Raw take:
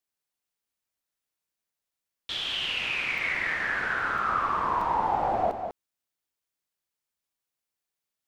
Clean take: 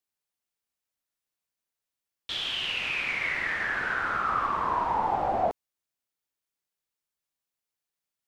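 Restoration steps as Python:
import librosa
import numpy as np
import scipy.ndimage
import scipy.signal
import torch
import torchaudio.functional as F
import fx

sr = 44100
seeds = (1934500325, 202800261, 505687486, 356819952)

y = fx.fix_interpolate(x, sr, at_s=(1.91, 3.18, 4.18, 4.81, 5.91), length_ms=3.6)
y = fx.fix_echo_inverse(y, sr, delay_ms=198, level_db=-8.0)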